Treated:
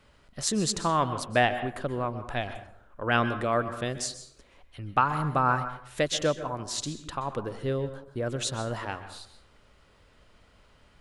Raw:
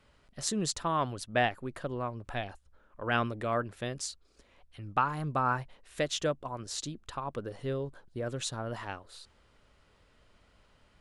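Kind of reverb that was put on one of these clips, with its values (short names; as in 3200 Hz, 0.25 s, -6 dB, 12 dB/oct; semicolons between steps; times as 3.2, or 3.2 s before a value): plate-style reverb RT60 0.61 s, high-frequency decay 0.6×, pre-delay 0.115 s, DRR 10.5 dB; gain +4.5 dB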